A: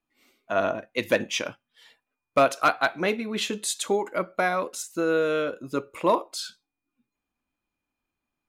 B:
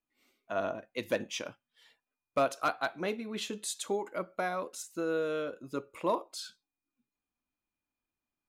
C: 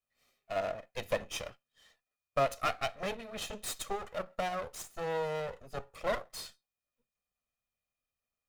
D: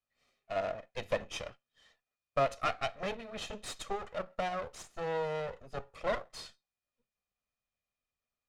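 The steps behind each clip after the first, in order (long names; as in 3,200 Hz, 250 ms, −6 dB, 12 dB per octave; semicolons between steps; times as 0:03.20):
dynamic equaliser 2,100 Hz, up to −4 dB, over −38 dBFS, Q 1.3; level −8 dB
lower of the sound and its delayed copy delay 1.6 ms
high-frequency loss of the air 60 metres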